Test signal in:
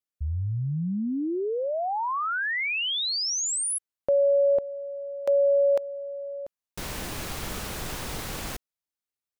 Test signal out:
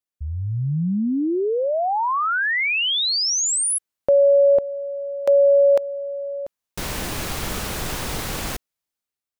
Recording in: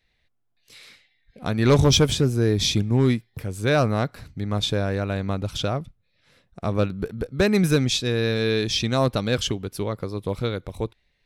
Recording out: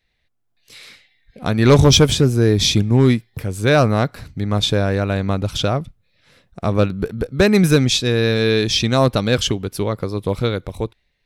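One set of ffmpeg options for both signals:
ffmpeg -i in.wav -af "dynaudnorm=framelen=120:gausssize=9:maxgain=6.5dB" out.wav

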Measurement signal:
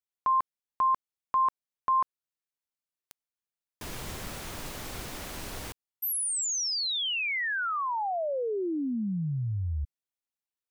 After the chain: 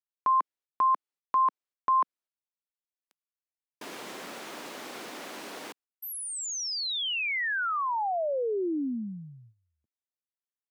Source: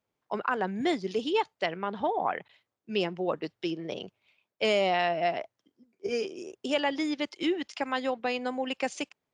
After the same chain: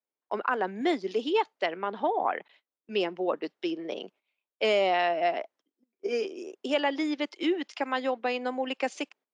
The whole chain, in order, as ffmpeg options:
ffmpeg -i in.wav -af "highpass=frequency=240:width=0.5412,highpass=frequency=240:width=1.3066,agate=range=-14dB:threshold=-56dB:ratio=16:release=267:detection=peak,lowpass=frequency=4000:poles=1,volume=1.5dB" out.wav

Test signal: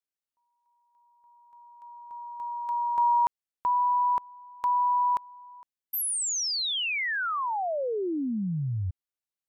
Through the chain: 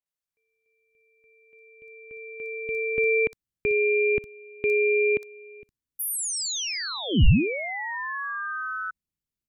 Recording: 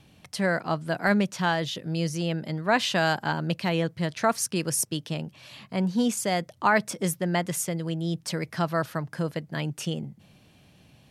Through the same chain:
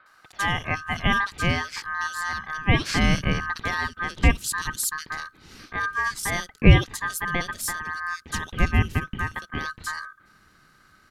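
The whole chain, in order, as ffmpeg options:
ffmpeg -i in.wav -filter_complex "[0:a]acrossover=split=2100[link_01][link_02];[link_02]adelay=60[link_03];[link_01][link_03]amix=inputs=2:normalize=0,aeval=exprs='val(0)*sin(2*PI*1400*n/s)':channel_layout=same,asubboost=boost=10.5:cutoff=230,volume=3dB" out.wav

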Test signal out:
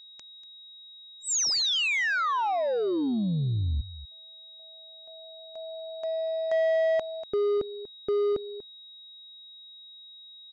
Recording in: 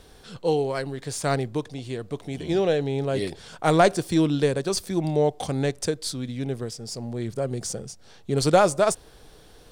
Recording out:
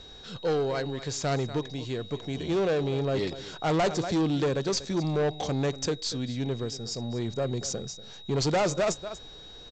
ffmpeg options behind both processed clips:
ffmpeg -i in.wav -af "highshelf=frequency=4200:gain=2,aeval=exprs='val(0)+0.00447*sin(2*PI*3800*n/s)':channel_layout=same,aecho=1:1:240:0.141,aresample=16000,asoftclip=type=tanh:threshold=-21.5dB,aresample=44100" out.wav

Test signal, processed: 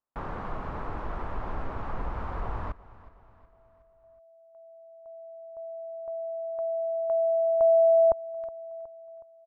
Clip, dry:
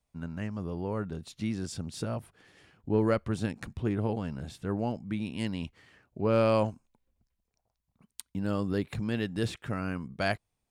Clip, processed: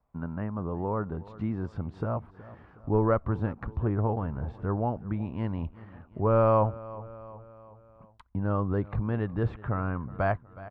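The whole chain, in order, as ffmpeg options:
ffmpeg -i in.wav -filter_complex "[0:a]asubboost=boost=4:cutoff=95,lowpass=frequency=1100:width_type=q:width=2.1,aecho=1:1:368|736|1104|1472:0.0891|0.0437|0.0214|0.0105,asplit=2[link_01][link_02];[link_02]acompressor=threshold=-40dB:ratio=6,volume=-2dB[link_03];[link_01][link_03]amix=inputs=2:normalize=0" out.wav

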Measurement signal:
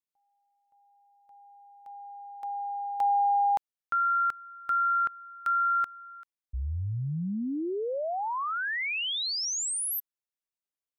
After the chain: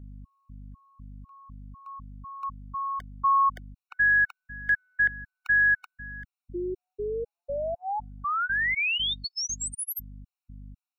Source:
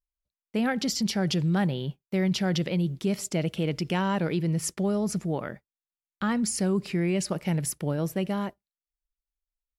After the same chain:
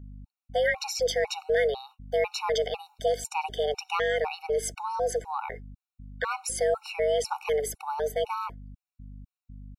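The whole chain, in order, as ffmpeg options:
ffmpeg -i in.wav -af "afreqshift=290,aeval=exprs='val(0)+0.00794*(sin(2*PI*50*n/s)+sin(2*PI*2*50*n/s)/2+sin(2*PI*3*50*n/s)/3+sin(2*PI*4*50*n/s)/4+sin(2*PI*5*50*n/s)/5)':channel_layout=same,equalizer=frequency=2000:width_type=o:width=2.2:gain=5.5,afftfilt=real='re*gt(sin(2*PI*2*pts/sr)*(1-2*mod(floor(b*sr/1024/740),2)),0)':imag='im*gt(sin(2*PI*2*pts/sr)*(1-2*mod(floor(b*sr/1024/740),2)),0)':win_size=1024:overlap=0.75" out.wav

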